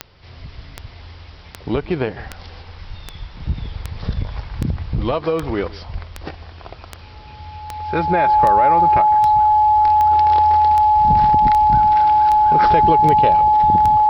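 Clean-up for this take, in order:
click removal
notch filter 850 Hz, Q 30
echo removal 154 ms −20.5 dB

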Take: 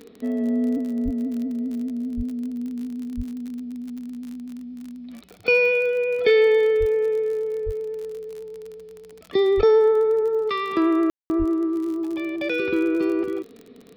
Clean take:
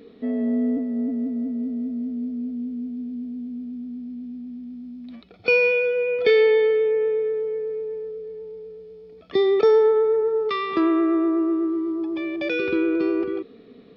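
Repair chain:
click removal
high-pass at the plosives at 0:01.04/0:02.16/0:03.16/0:06.79/0:07.65/0:09.56/0:11.38
ambience match 0:11.10–0:11.30

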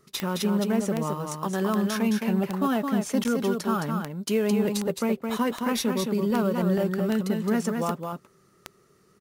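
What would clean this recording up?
click removal
repair the gap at 0:03.24, 9.6 ms
echo removal 216 ms −5 dB

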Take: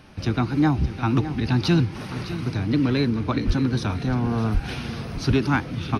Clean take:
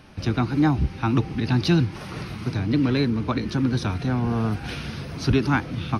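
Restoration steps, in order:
clipped peaks rebuilt −11 dBFS
high-pass at the plosives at 0:03.46/0:04.53
echo removal 608 ms −13 dB

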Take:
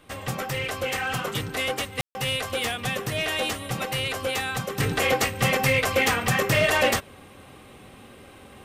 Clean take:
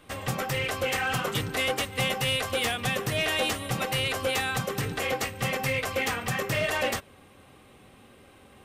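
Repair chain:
ambience match 0:02.01–0:02.15
level 0 dB, from 0:04.80 −6.5 dB

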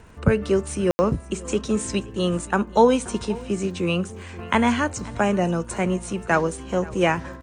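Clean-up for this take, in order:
click removal
ambience match 0:00.91–0:00.99
echo removal 529 ms −21 dB

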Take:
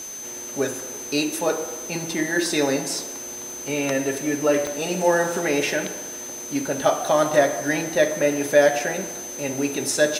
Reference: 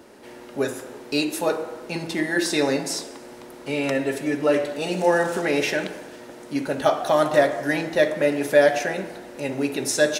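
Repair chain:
click removal
notch filter 6,200 Hz, Q 30
noise reduction from a noise print 7 dB

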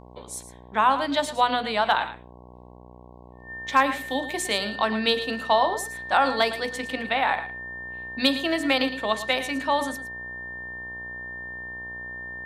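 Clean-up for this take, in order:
clipped peaks rebuilt −7.5 dBFS
hum removal 61.1 Hz, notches 18
notch filter 1,800 Hz, Q 30
echo removal 111 ms −12.5 dB

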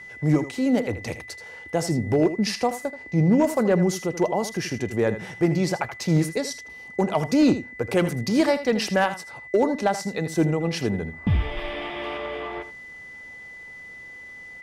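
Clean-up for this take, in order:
clipped peaks rebuilt −11.5 dBFS
notch filter 2,000 Hz, Q 30
echo removal 80 ms −12.5 dB

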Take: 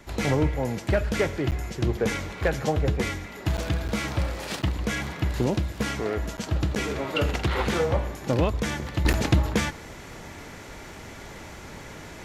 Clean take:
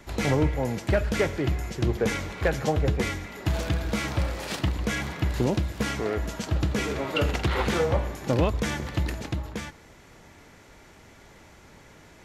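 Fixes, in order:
click removal
repair the gap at 0:01.51/0:03.57/0:03.88/0:04.62/0:06.37/0:06.75/0:09.13, 8.8 ms
level 0 dB, from 0:09.05 −10 dB

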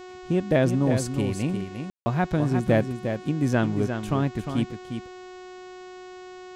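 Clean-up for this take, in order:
hum removal 366.9 Hz, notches 21
ambience match 0:01.90–0:02.06
echo removal 354 ms −7.5 dB

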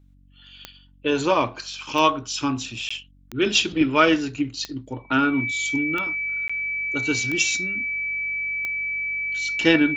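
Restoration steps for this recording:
click removal
hum removal 47 Hz, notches 6
notch filter 2,300 Hz, Q 30
repair the gap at 0:02.89/0:06.48, 15 ms

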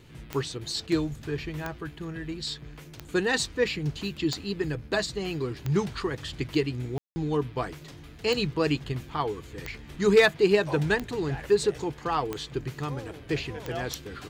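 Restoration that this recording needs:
clipped peaks rebuilt −10.5 dBFS
click removal
ambience match 0:06.98–0:07.16

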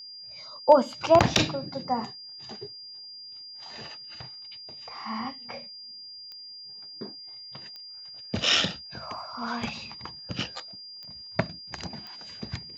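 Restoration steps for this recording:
clipped peaks rebuilt −5.5 dBFS
click removal
notch filter 4,800 Hz, Q 30

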